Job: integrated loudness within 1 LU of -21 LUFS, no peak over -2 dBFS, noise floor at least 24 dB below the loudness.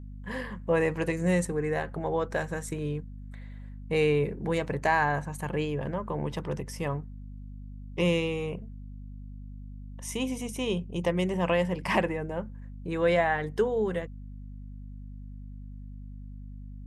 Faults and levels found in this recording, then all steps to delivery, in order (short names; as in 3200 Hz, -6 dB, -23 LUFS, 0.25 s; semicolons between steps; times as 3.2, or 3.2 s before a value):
hum 50 Hz; harmonics up to 250 Hz; hum level -39 dBFS; loudness -29.5 LUFS; peak -12.0 dBFS; loudness target -21.0 LUFS
-> de-hum 50 Hz, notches 5; gain +8.5 dB